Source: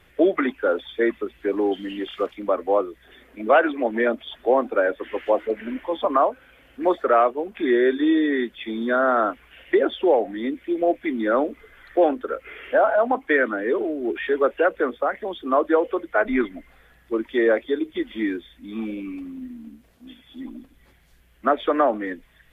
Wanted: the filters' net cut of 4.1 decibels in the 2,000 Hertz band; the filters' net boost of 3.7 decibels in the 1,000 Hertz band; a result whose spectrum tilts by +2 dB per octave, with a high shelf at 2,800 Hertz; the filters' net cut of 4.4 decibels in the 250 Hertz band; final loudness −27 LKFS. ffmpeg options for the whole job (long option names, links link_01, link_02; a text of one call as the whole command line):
ffmpeg -i in.wav -af "equalizer=frequency=250:width_type=o:gain=-7,equalizer=frequency=1000:width_type=o:gain=9,equalizer=frequency=2000:width_type=o:gain=-8.5,highshelf=frequency=2800:gain=-5.5,volume=-4.5dB" out.wav